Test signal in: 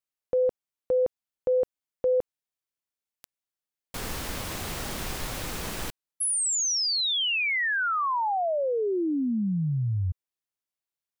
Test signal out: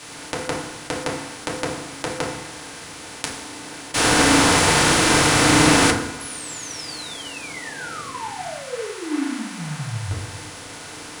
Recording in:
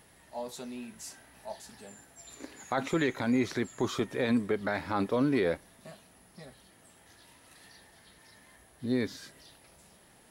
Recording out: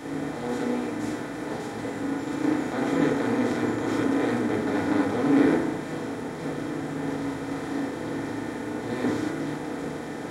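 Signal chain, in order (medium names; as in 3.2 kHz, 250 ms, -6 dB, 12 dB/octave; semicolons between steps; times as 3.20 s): spectral levelling over time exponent 0.2; FDN reverb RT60 0.88 s, low-frequency decay 1.55×, high-frequency decay 0.3×, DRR -3.5 dB; three bands expanded up and down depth 70%; trim -11.5 dB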